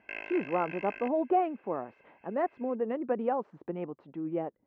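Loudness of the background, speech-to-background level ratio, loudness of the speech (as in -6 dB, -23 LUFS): -42.5 LUFS, 10.0 dB, -32.5 LUFS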